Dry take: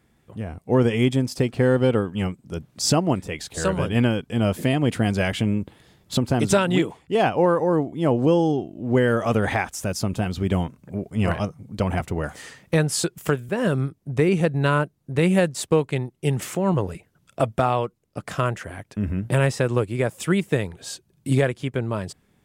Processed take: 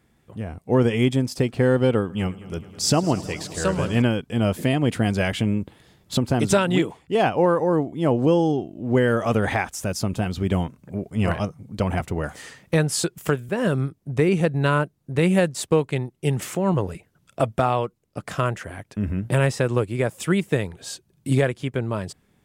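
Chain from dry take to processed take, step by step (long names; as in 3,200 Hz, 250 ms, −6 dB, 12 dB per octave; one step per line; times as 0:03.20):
0:01.99–0:04.02: echo machine with several playback heads 106 ms, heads first and second, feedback 75%, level −21 dB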